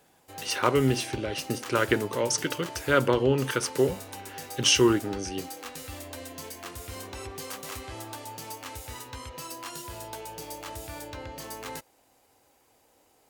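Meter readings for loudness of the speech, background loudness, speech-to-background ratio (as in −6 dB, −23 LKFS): −26.0 LKFS, −39.5 LKFS, 13.5 dB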